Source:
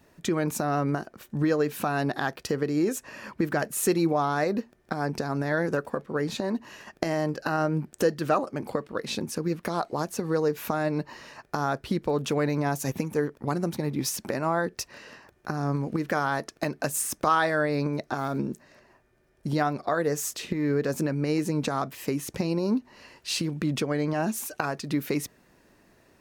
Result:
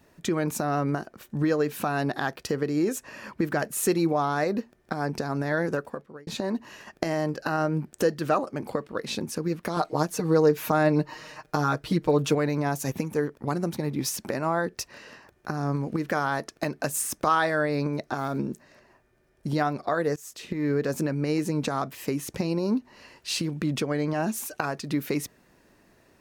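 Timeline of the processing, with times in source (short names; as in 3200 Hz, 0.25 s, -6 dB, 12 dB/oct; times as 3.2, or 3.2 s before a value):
5.69–6.27 fade out
9.76–12.35 comb 6.5 ms, depth 94%
20.16–20.65 fade in, from -21.5 dB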